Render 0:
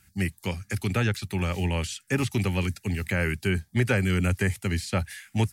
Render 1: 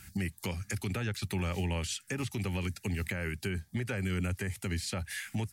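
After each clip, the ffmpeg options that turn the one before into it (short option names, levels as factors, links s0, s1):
-af "acompressor=threshold=0.01:ratio=2,alimiter=level_in=2.99:limit=0.0631:level=0:latency=1:release=226,volume=0.335,volume=2.66"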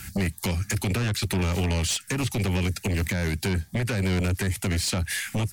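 -filter_complex "[0:a]aeval=exprs='0.0596*sin(PI/2*1.78*val(0)/0.0596)':c=same,acrossover=split=390|3000[s0][s1][s2];[s1]acompressor=threshold=0.02:ratio=6[s3];[s0][s3][s2]amix=inputs=3:normalize=0,volume=1.5"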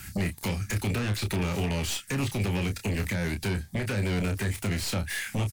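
-filter_complex "[0:a]acrossover=split=3300[s0][s1];[s1]aeval=exprs='clip(val(0),-1,0.00944)':c=same[s2];[s0][s2]amix=inputs=2:normalize=0,asplit=2[s3][s4];[s4]adelay=29,volume=0.447[s5];[s3][s5]amix=inputs=2:normalize=0,volume=0.708"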